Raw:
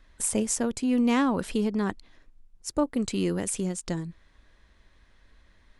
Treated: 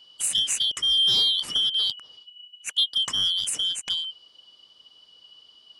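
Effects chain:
band-splitting scrambler in four parts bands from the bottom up 3412
in parallel at −6.5 dB: soft clipping −25 dBFS, distortion −11 dB

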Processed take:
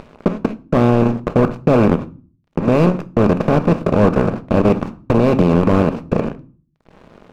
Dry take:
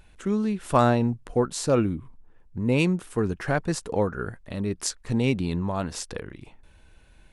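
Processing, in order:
compressor on every frequency bin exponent 0.2
output level in coarse steps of 17 dB
noise gate −28 dBFS, range −30 dB
upward compression, threshold −21 dBFS
Chebyshev low-pass filter 3,100 Hz, order 2
dead-zone distortion −39 dBFS
tilt shelving filter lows +6.5 dB, about 1,100 Hz
convolution reverb RT60 0.40 s, pre-delay 5 ms, DRR 11 dB
boost into a limiter +6.5 dB
slew-rate limiting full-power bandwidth 240 Hz
level −1 dB

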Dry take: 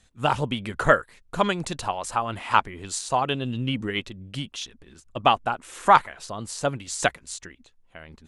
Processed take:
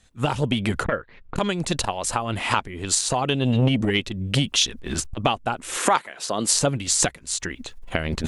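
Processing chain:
camcorder AGC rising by 32 dB per second
0:05.77–0:06.53: high-pass filter 260 Hz 12 dB per octave
dynamic equaliser 1,100 Hz, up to −7 dB, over −32 dBFS, Q 0.81
0:00.84–0:01.36: Gaussian smoothing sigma 2.7 samples
saturating transformer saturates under 630 Hz
level +1 dB

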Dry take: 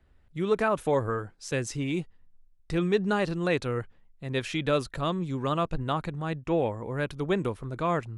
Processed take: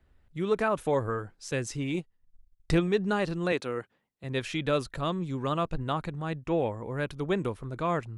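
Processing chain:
0:01.94–0:02.88: transient designer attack +9 dB, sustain −12 dB
0:03.52–0:04.24: high-pass filter 210 Hz 12 dB per octave
level −1.5 dB

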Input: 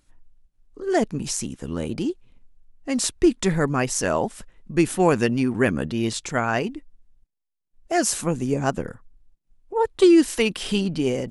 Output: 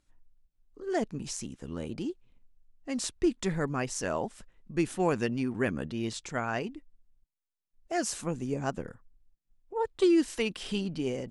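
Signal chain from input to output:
low-pass filter 9,100 Hz 12 dB per octave
level −9 dB

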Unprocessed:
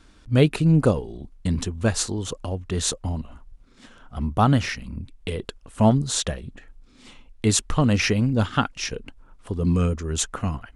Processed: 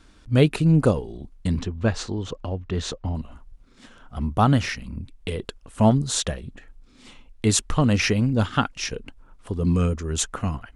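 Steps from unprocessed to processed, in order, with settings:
0:01.59–0:03.15: high-frequency loss of the air 140 metres

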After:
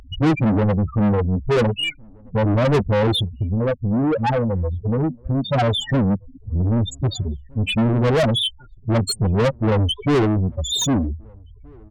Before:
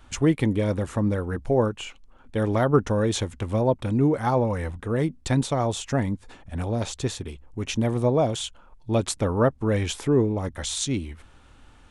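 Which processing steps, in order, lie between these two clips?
low-shelf EQ 310 Hz +8 dB
0:03.21–0:05.54: downward compressor 20 to 1, threshold −22 dBFS, peak gain reduction 12.5 dB
spectral peaks only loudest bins 4
mid-hump overdrive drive 31 dB, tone 7,600 Hz, clips at −11 dBFS
slap from a distant wall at 270 metres, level −29 dB

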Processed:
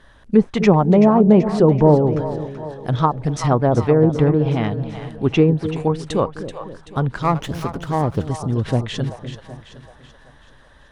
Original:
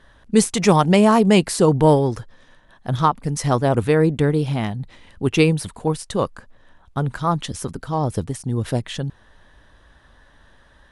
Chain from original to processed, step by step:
treble cut that deepens with the level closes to 820 Hz, closed at −12 dBFS
echo with a time of its own for lows and highs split 530 Hz, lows 253 ms, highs 382 ms, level −10.5 dB
0:07.22–0:08.27: windowed peak hold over 5 samples
level +2 dB

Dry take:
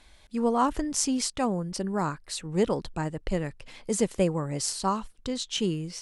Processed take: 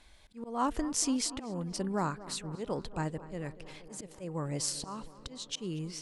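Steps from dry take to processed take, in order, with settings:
volume swells 255 ms
tape delay 236 ms, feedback 83%, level −15.5 dB, low-pass 2,100 Hz
level −3.5 dB

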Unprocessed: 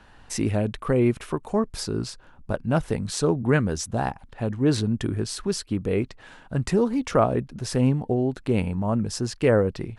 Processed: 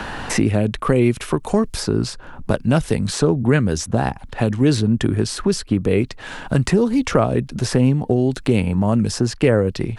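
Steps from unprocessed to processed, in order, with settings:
dynamic equaliser 940 Hz, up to −4 dB, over −33 dBFS, Q 0.83
multiband upward and downward compressor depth 70%
level +6.5 dB

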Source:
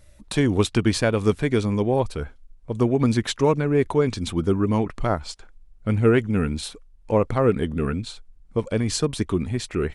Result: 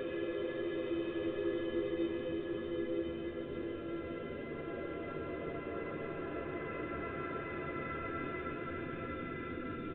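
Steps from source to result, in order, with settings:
noise gate −42 dBFS, range −27 dB
low-shelf EQ 70 Hz −8.5 dB
reversed playback
downward compressor 6 to 1, threshold −27 dBFS, peak gain reduction 13.5 dB
reversed playback
tuned comb filter 340 Hz, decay 0.15 s, harmonics all, mix 100%
pitch-shifted copies added −12 semitones −17 dB, +3 semitones −6 dB, +7 semitones −4 dB
soft clipping −31 dBFS, distortion −16 dB
extreme stretch with random phases 27×, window 0.25 s, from 0:07.61
on a send: feedback delay with all-pass diffusion 1,113 ms, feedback 44%, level −6 dB
on the sum: downsampling to 8,000 Hz
level +3.5 dB

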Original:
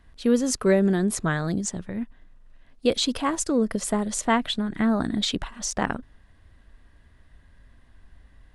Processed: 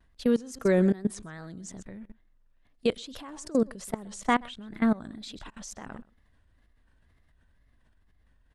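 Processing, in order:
tape wow and flutter 110 cents
single-tap delay 128 ms −19 dB
output level in coarse steps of 21 dB

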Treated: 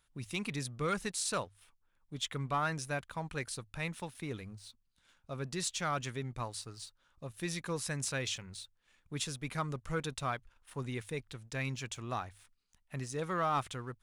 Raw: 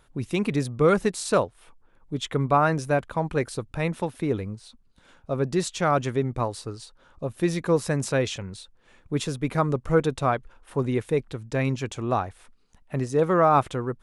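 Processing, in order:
guitar amp tone stack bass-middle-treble 5-5-5
leveller curve on the samples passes 1
mains-hum notches 50/100 Hz

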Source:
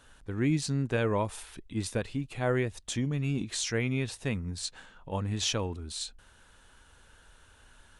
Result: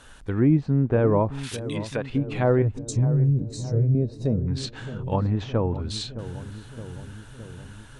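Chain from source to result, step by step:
treble cut that deepens with the level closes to 940 Hz, closed at −27 dBFS
0:01.43–0:02.10: spectral tilt +4 dB per octave
0:02.82–0:04.47: gain on a spectral selection 670–3,700 Hz −19 dB
0:02.62–0:03.95: octave-band graphic EQ 125/250/500/1,000/2,000/4,000/8,000 Hz +7/−12/−4/−3/−7/−6/+9 dB
on a send: feedback echo with a low-pass in the loop 615 ms, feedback 72%, low-pass 960 Hz, level −12.5 dB
on the sum: level +8.5 dB

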